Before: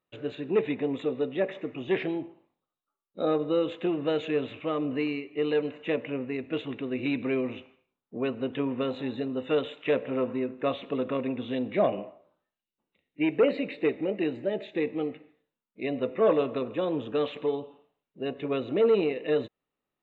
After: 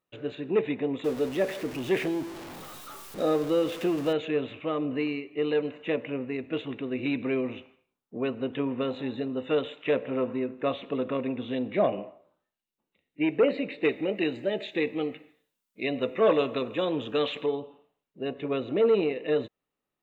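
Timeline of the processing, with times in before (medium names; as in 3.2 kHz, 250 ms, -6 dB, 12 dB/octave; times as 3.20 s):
1.04–4.13 s: jump at every zero crossing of -35.5 dBFS
13.83–17.46 s: treble shelf 2.3 kHz +11.5 dB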